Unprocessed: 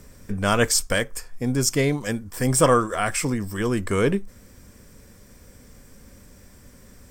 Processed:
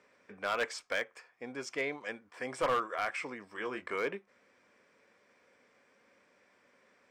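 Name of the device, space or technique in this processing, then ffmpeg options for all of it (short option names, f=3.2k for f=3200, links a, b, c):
megaphone: -filter_complex "[0:a]highpass=540,lowpass=2.8k,equalizer=f=2.3k:t=o:w=0.32:g=5,asoftclip=type=hard:threshold=-16.5dB,asettb=1/sr,asplit=3[a][b][c];[a]atrim=end=3.534[d];[b]atrim=start=3.53:end=3.95,asetpts=PTS-STARTPTS,afade=t=in:d=0.004:c=qsin,afade=t=out:st=0.416:d=0.004:c=qsin,asplit=2[e][f];[f]adelay=23,volume=-7.5dB[g];[e][g]amix=inputs=2:normalize=0,atrim=end_sample=18522[h];[c]atrim=start=3.946[i];[d][h]acrossfade=d=0.004:c1=hsin:c2=qsin[j];[j][i]acrossfade=d=0.004:c1=qsin:c2=hsin,volume=-8dB"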